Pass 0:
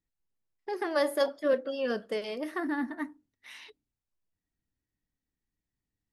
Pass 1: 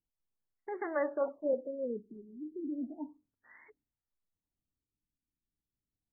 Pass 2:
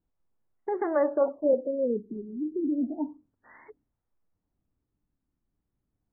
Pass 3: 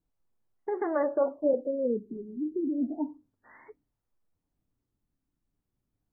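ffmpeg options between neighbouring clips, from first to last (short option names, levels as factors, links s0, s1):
-af "afftfilt=real='re*lt(b*sr/1024,410*pow(2300/410,0.5+0.5*sin(2*PI*0.33*pts/sr)))':imag='im*lt(b*sr/1024,410*pow(2300/410,0.5+0.5*sin(2*PI*0.33*pts/sr)))':win_size=1024:overlap=0.75,volume=0.562"
-filter_complex "[0:a]asplit=2[s0][s1];[s1]acompressor=threshold=0.00794:ratio=6,volume=1.06[s2];[s0][s2]amix=inputs=2:normalize=0,lowpass=1100,volume=2.11"
-af "flanger=delay=6.6:depth=1.9:regen=-64:speed=1.3:shape=sinusoidal,volume=1.41"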